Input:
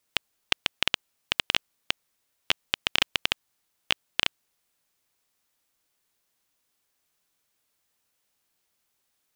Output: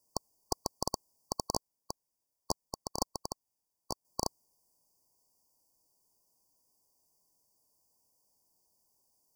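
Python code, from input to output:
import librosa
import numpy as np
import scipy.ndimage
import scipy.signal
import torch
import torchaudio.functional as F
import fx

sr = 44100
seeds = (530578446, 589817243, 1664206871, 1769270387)

y = fx.brickwall_bandstop(x, sr, low_hz=1100.0, high_hz=4500.0)
y = fx.upward_expand(y, sr, threshold_db=-39.0, expansion=2.5, at=(1.56, 4.05))
y = y * librosa.db_to_amplitude(2.0)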